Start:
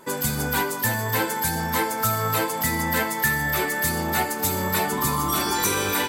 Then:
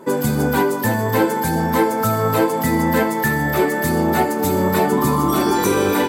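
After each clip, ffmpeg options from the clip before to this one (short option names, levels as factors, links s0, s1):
-af "equalizer=f=320:w=0.33:g=15,volume=0.708"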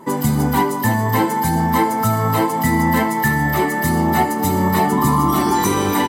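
-af "aecho=1:1:1:0.56"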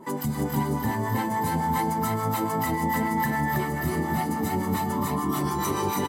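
-filter_complex "[0:a]alimiter=limit=0.211:level=0:latency=1:release=482,acrossover=split=720[s0][s1];[s0]aeval=exprs='val(0)*(1-0.7/2+0.7/2*cos(2*PI*7*n/s))':c=same[s2];[s1]aeval=exprs='val(0)*(1-0.7/2-0.7/2*cos(2*PI*7*n/s))':c=same[s3];[s2][s3]amix=inputs=2:normalize=0,asplit=2[s4][s5];[s5]aecho=0:1:281|322|857:0.335|0.631|0.1[s6];[s4][s6]amix=inputs=2:normalize=0,volume=0.794"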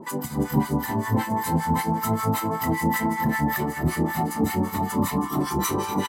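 -filter_complex "[0:a]acontrast=68,acrossover=split=1000[s0][s1];[s0]aeval=exprs='val(0)*(1-1/2+1/2*cos(2*PI*5.2*n/s))':c=same[s2];[s1]aeval=exprs='val(0)*(1-1/2-1/2*cos(2*PI*5.2*n/s))':c=same[s3];[s2][s3]amix=inputs=2:normalize=0,asplit=2[s4][s5];[s5]adelay=31,volume=0.211[s6];[s4][s6]amix=inputs=2:normalize=0"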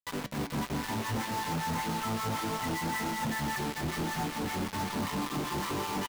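-af "aresample=8000,asoftclip=type=tanh:threshold=0.0944,aresample=44100,acrusher=bits=4:mix=0:aa=0.000001,flanger=delay=6.6:depth=2.8:regen=-77:speed=0.68:shape=sinusoidal,volume=0.794"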